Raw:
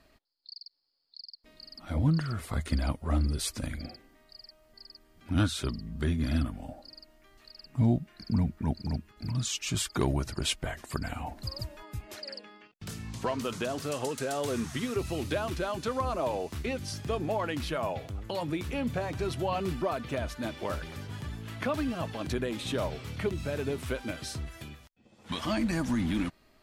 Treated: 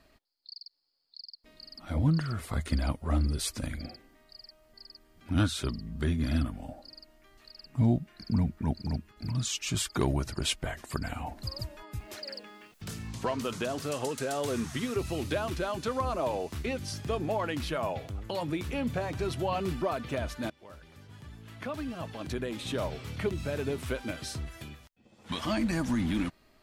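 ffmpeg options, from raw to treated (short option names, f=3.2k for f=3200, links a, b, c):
-filter_complex "[0:a]asettb=1/sr,asplit=3[a][b][c];[a]atrim=end=11.994[d];[b]atrim=start=11.99:end=13.12,asetpts=PTS-STARTPTS,afade=t=in:d=0.004:c=qsin,afade=t=out:st=1.126:d=0.004:c=qsin,aeval=exprs='val(0)+0.5*0.00158*sgn(val(0))':c=same[e];[c]atrim=start=13.116[f];[d][e]acrossfade=d=0.004:c1=hsin:c2=qsin[g];[g][f]acrossfade=d=0.004:c1=qsin:c2=hsin,asplit=2[h][i];[h]atrim=end=20.5,asetpts=PTS-STARTPTS,afade=t=out:st=20.496:d=0.004:c=hsin:silence=0.0841395[j];[i]atrim=start=20.5,asetpts=PTS-STARTPTS,afade=t=in:d=2.65:silence=0.0841395[k];[j][k]concat=n=2:v=0:a=1"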